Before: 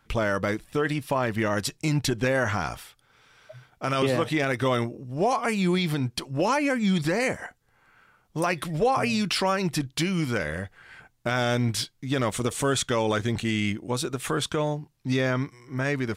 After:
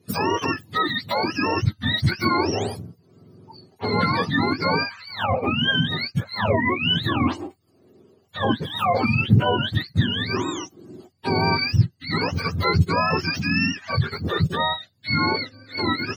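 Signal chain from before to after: spectrum inverted on a logarithmic axis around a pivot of 750 Hz; 0.76–1.24 s: tilt EQ +2 dB/octave; trim +4.5 dB

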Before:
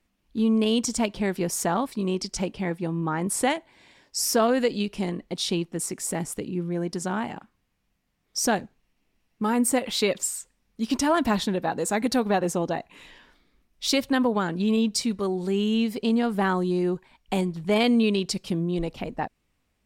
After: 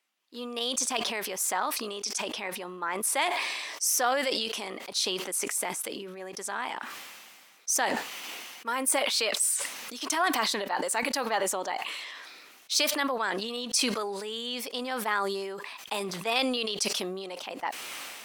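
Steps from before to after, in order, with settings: Bessel high-pass 890 Hz, order 2; speed mistake 44.1 kHz file played as 48 kHz; decay stretcher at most 28 dB/s

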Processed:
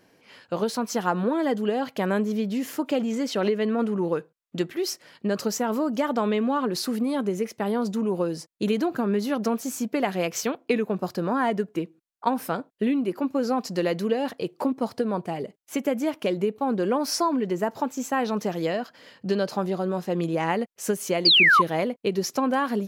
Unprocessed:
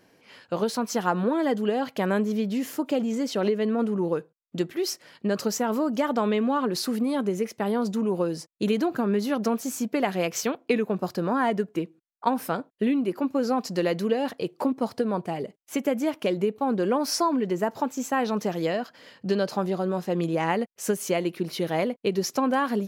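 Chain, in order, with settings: 2.68–4.76 s: peaking EQ 2 kHz +3.5 dB 2.2 oct; 21.25–21.62 s: painted sound fall 980–5000 Hz -16 dBFS

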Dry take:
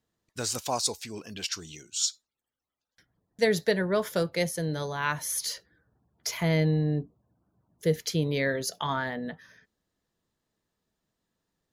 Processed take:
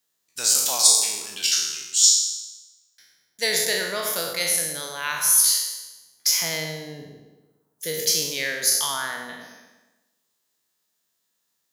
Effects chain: spectral sustain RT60 0.96 s; tilt EQ +4.5 dB/octave; on a send: bucket-brigade echo 114 ms, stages 1024, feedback 48%, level -7 dB; on the sum: trim -2.5 dB

